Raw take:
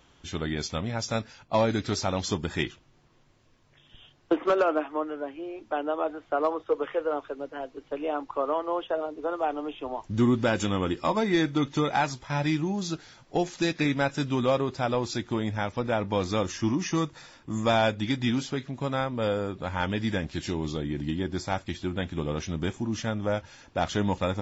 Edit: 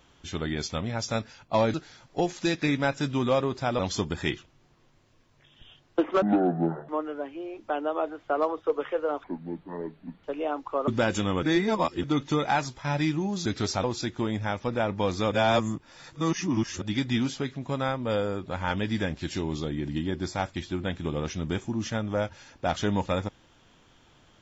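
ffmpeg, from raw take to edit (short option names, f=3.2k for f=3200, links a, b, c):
-filter_complex "[0:a]asplit=14[a][b][c][d][e][f][g][h][i][j][k][l][m][n];[a]atrim=end=1.742[o];[b]atrim=start=12.908:end=14.962[p];[c]atrim=start=2.118:end=4.554[q];[d]atrim=start=4.55:end=4.91,asetpts=PTS-STARTPTS,asetrate=23814,aresample=44100[r];[e]atrim=start=4.906:end=7.264[s];[f]atrim=start=7.26:end=7.87,asetpts=PTS-STARTPTS,asetrate=26901,aresample=44100[t];[g]atrim=start=7.866:end=8.512[u];[h]atrim=start=10.328:end=10.882[v];[i]atrim=start=10.878:end=11.492,asetpts=PTS-STARTPTS,areverse[w];[j]atrim=start=11.488:end=12.912[x];[k]atrim=start=1.738:end=2.122[y];[l]atrim=start=14.958:end=16.442[z];[m]atrim=start=16.438:end=17.942,asetpts=PTS-STARTPTS,areverse[aa];[n]atrim=start=17.938[ab];[o][p]acrossfade=d=0.004:c1=hsin:c2=hsin[ac];[ac][q]acrossfade=d=0.004:c1=hsin:c2=hsin[ad];[ad][r]acrossfade=d=0.004:c1=hsin:c2=hsin[ae];[ae][s]acrossfade=d=0.004:c1=hsin:c2=hsin[af];[af][t]acrossfade=d=0.004:c1=hsin:c2=hsin[ag];[ag][u]acrossfade=d=0.004:c1=hsin:c2=hsin[ah];[ah][v]acrossfade=d=0.004:c1=hsin:c2=hsin[ai];[ai][w]acrossfade=d=0.004:c1=hsin:c2=hsin[aj];[aj][x]acrossfade=d=0.004:c1=hsin:c2=hsin[ak];[ak][y]acrossfade=d=0.004:c1=hsin:c2=hsin[al];[al][z]acrossfade=d=0.004:c1=hsin:c2=hsin[am];[am][aa]acrossfade=d=0.004:c1=hsin:c2=hsin[an];[an][ab]acrossfade=d=0.004:c1=hsin:c2=hsin"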